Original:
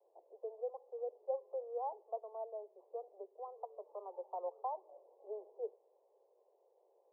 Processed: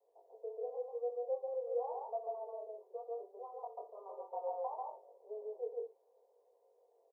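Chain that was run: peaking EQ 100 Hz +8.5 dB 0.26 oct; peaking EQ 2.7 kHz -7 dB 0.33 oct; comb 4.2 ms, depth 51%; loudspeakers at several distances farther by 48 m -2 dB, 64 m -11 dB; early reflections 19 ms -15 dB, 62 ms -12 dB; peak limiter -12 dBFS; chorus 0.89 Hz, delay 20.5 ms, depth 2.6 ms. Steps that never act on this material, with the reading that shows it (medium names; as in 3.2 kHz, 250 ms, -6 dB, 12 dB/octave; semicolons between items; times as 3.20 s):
peaking EQ 100 Hz: input has nothing below 340 Hz; peaking EQ 2.7 kHz: input has nothing above 1.2 kHz; peak limiter -12 dBFS: peak at its input -25.5 dBFS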